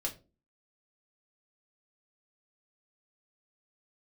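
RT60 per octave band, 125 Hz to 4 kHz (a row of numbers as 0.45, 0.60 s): 0.45, 0.50, 0.40, 0.25, 0.25, 0.20 s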